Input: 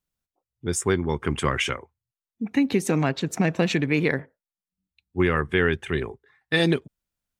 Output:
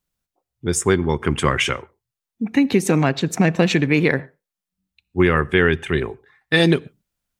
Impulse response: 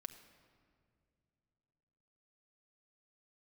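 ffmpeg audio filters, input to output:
-filter_complex "[0:a]asplit=2[a][b];[1:a]atrim=start_sample=2205,atrim=end_sample=6615[c];[b][c]afir=irnorm=-1:irlink=0,volume=-5.5dB[d];[a][d]amix=inputs=2:normalize=0,volume=3dB"

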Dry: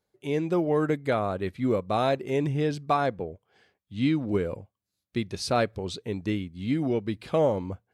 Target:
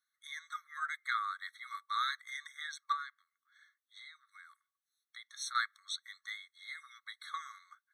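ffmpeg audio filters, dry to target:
-filter_complex "[0:a]lowshelf=f=370:g=5,asettb=1/sr,asplit=3[a][b][c];[a]atrim=end=2.924[d];[b]atrim=start=2.92:end=5.55,asetpts=PTS-STARTPTS,afade=t=in:d=0.004:c=qsin,afade=t=out:st=2.626:d=0.004:c=qsin,acompressor=threshold=-29dB:ratio=8[e];[c]atrim=start=5.546[f];[d][e]acrossfade=d=0.004:c1=hsin:c2=qsin[g];[g][f]acrossfade=d=0.004:c1=qsin:c2=hsin,afftfilt=real='re*eq(mod(floor(b*sr/1024/1100),2),1)':imag='im*eq(mod(floor(b*sr/1024/1100),2),1)':win_size=1024:overlap=0.75"

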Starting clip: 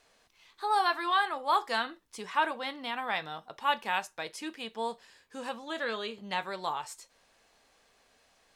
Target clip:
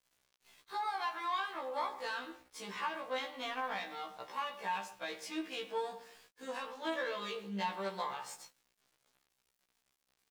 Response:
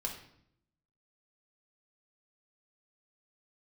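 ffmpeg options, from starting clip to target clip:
-filter_complex "[0:a]aeval=exprs='if(lt(val(0),0),0.447*val(0),val(0))':c=same,highpass=f=160:w=0.5412,highpass=f=160:w=1.3066,acompressor=threshold=-36dB:ratio=10,atempo=0.83,asplit=2[a][b];[b]adelay=119,lowpass=f=1.3k:p=1,volume=-13dB,asplit=2[c][d];[d]adelay=119,lowpass=f=1.3k:p=1,volume=0.37,asplit=2[e][f];[f]adelay=119,lowpass=f=1.3k:p=1,volume=0.37,asplit=2[g][h];[h]adelay=119,lowpass=f=1.3k:p=1,volume=0.37[i];[a][c][e][g][i]amix=inputs=5:normalize=0,asplit=2[j][k];[1:a]atrim=start_sample=2205,lowpass=7.3k[l];[k][l]afir=irnorm=-1:irlink=0,volume=-5dB[m];[j][m]amix=inputs=2:normalize=0,aeval=exprs='val(0)*gte(abs(val(0)),0.00141)':c=same,afftfilt=real='re*1.73*eq(mod(b,3),0)':imag='im*1.73*eq(mod(b,3),0)':win_size=2048:overlap=0.75,volume=1dB"

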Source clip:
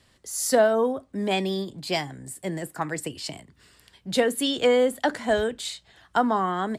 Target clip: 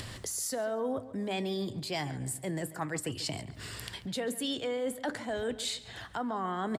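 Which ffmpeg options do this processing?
-filter_complex "[0:a]equalizer=f=110:w=5.5:g=12,acompressor=mode=upward:threshold=-28dB:ratio=2.5,alimiter=limit=-16dB:level=0:latency=1:release=140,areverse,acompressor=threshold=-31dB:ratio=6,areverse,asplit=2[a][b];[b]adelay=139,lowpass=f=3.6k:p=1,volume=-15dB,asplit=2[c][d];[d]adelay=139,lowpass=f=3.6k:p=1,volume=0.43,asplit=2[e][f];[f]adelay=139,lowpass=f=3.6k:p=1,volume=0.43,asplit=2[g][h];[h]adelay=139,lowpass=f=3.6k:p=1,volume=0.43[i];[a][c][e][g][i]amix=inputs=5:normalize=0"

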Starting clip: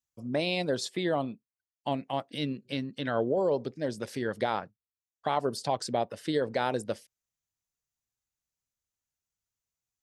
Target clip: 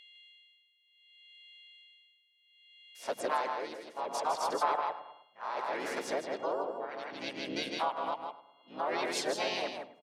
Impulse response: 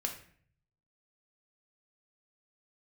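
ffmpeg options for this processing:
-filter_complex "[0:a]areverse,highpass=450,equalizer=f=910:t=q:w=4:g=10,equalizer=f=2k:t=q:w=4:g=5,equalizer=f=3k:t=q:w=4:g=-3,lowpass=f=9.5k:w=0.5412,lowpass=f=9.5k:w=1.3066,asplit=2[a][b];[b]adelay=105,lowpass=f=1.7k:p=1,volume=-11.5dB,asplit=2[c][d];[d]adelay=105,lowpass=f=1.7k:p=1,volume=0.54,asplit=2[e][f];[f]adelay=105,lowpass=f=1.7k:p=1,volume=0.54,asplit=2[g][h];[h]adelay=105,lowpass=f=1.7k:p=1,volume=0.54,asplit=2[i][j];[j]adelay=105,lowpass=f=1.7k:p=1,volume=0.54,asplit=2[k][l];[l]adelay=105,lowpass=f=1.7k:p=1,volume=0.54[m];[c][e][g][i][k][m]amix=inputs=6:normalize=0[n];[a][n]amix=inputs=2:normalize=0,aeval=exprs='val(0)+0.00112*sin(2*PI*2800*n/s)':c=same,asplit=2[o][p];[p]aecho=0:1:156:0.596[q];[o][q]amix=inputs=2:normalize=0,tremolo=f=0.65:d=0.86,asplit=4[r][s][t][u];[s]asetrate=33038,aresample=44100,atempo=1.33484,volume=-7dB[v];[t]asetrate=52444,aresample=44100,atempo=0.840896,volume=-1dB[w];[u]asetrate=66075,aresample=44100,atempo=0.66742,volume=-10dB[x];[r][v][w][x]amix=inputs=4:normalize=0,acompressor=threshold=-36dB:ratio=2,volume=1.5dB"

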